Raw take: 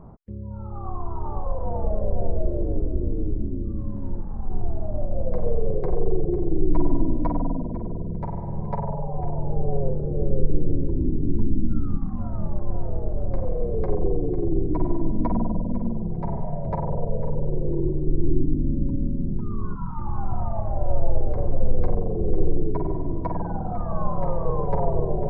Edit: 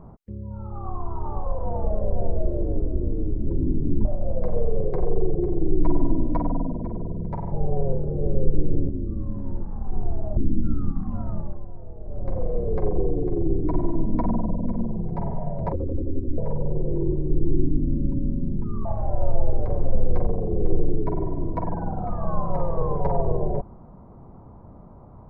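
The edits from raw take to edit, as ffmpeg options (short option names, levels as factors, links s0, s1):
-filter_complex "[0:a]asplit=11[s0][s1][s2][s3][s4][s5][s6][s7][s8][s9][s10];[s0]atrim=end=3.472[s11];[s1]atrim=start=10.848:end=11.432[s12];[s2]atrim=start=4.948:end=8.422[s13];[s3]atrim=start=9.478:end=10.852[s14];[s4]atrim=start=3.468:end=4.952[s15];[s5]atrim=start=11.428:end=12.72,asetpts=PTS-STARTPTS,afade=t=out:st=0.902:d=0.39:silence=0.251189[s16];[s6]atrim=start=12.72:end=13.07,asetpts=PTS-STARTPTS,volume=0.251[s17];[s7]atrim=start=13.07:end=16.784,asetpts=PTS-STARTPTS,afade=t=in:d=0.39:silence=0.251189[s18];[s8]atrim=start=16.78:end=17.15,asetpts=PTS-STARTPTS,asetrate=24696,aresample=44100,atrim=end_sample=29137,asetpts=PTS-STARTPTS[s19];[s9]atrim=start=17.146:end=19.622[s20];[s10]atrim=start=20.528[s21];[s11][s12]acrossfade=d=0.004:c1=hsin:c2=hsin[s22];[s22][s13]acrossfade=d=0.004:c1=hsin:c2=hsin[s23];[s23][s14]acrossfade=d=0.004:c1=hsin:c2=hsin[s24];[s24][s15]acrossfade=d=0.004:c1=hsin:c2=hsin[s25];[s16][s17][s18]concat=n=3:v=0:a=1[s26];[s25][s26]acrossfade=d=0.004:c1=hsin:c2=hsin[s27];[s27][s19]acrossfade=d=0.004:c1=hsin:c2=hsin[s28];[s28][s20]acrossfade=d=0.004:c1=hsin:c2=hsin[s29];[s29][s21]acrossfade=d=0.004:c1=hsin:c2=hsin"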